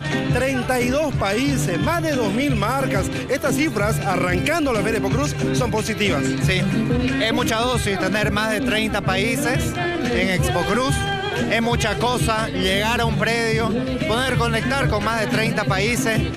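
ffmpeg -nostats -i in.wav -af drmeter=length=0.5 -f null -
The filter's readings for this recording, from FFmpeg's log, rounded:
Channel 1: DR: 10.8
Overall DR: 10.8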